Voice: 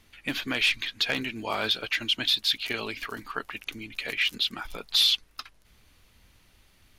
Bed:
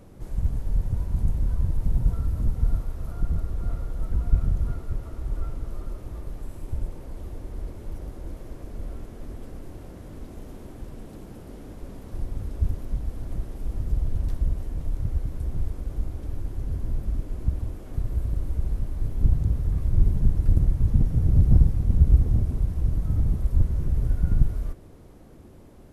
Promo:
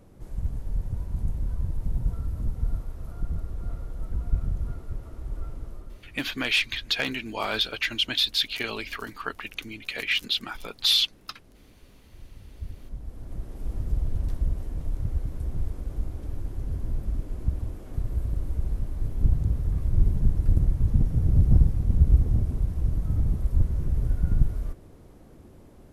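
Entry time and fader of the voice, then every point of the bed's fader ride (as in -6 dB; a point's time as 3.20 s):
5.90 s, +0.5 dB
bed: 5.64 s -4.5 dB
6.25 s -15.5 dB
12.34 s -15.5 dB
13.68 s -1.5 dB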